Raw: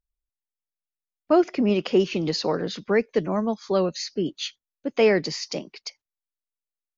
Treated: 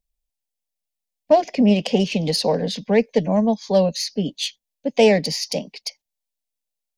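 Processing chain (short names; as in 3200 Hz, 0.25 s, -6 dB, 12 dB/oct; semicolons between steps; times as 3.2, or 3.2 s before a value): self-modulated delay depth 0.065 ms; fixed phaser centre 350 Hz, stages 6; gain +7.5 dB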